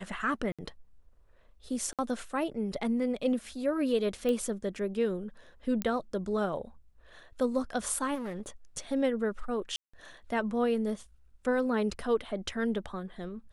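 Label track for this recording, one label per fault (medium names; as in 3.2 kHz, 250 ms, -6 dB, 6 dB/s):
0.520000	0.590000	dropout 66 ms
1.930000	1.990000	dropout 57 ms
4.290000	4.290000	pop -20 dBFS
5.820000	5.820000	pop -16 dBFS
8.140000	8.490000	clipped -33.5 dBFS
9.760000	9.940000	dropout 175 ms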